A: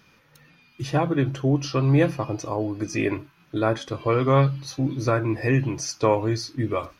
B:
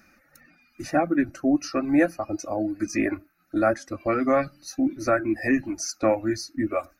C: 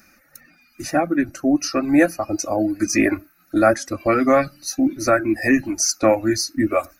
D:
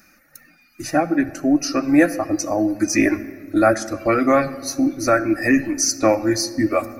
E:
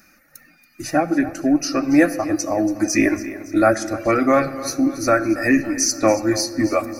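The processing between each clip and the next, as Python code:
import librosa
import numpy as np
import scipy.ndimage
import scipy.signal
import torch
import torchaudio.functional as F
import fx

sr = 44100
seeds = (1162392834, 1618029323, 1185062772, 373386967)

y1 = fx.dereverb_blind(x, sr, rt60_s=0.96)
y1 = fx.fixed_phaser(y1, sr, hz=660.0, stages=8)
y1 = y1 * librosa.db_to_amplitude(4.0)
y2 = fx.rider(y1, sr, range_db=10, speed_s=2.0)
y2 = fx.high_shelf(y2, sr, hz=4800.0, db=10.5)
y2 = y2 * librosa.db_to_amplitude(4.5)
y3 = fx.room_shoebox(y2, sr, seeds[0], volume_m3=2600.0, walls='mixed', distance_m=0.49)
y4 = fx.echo_feedback(y3, sr, ms=281, feedback_pct=50, wet_db=-15.5)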